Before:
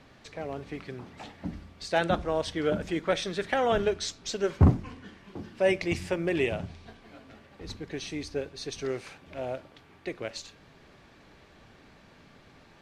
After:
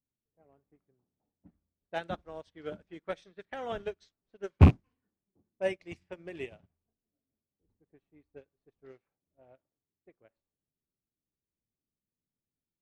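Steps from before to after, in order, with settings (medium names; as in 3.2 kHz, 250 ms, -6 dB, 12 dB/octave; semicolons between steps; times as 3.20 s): rattle on loud lows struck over -19 dBFS, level -24 dBFS; level-controlled noise filter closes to 300 Hz, open at -24 dBFS; upward expansion 2.5:1, over -41 dBFS; trim +3.5 dB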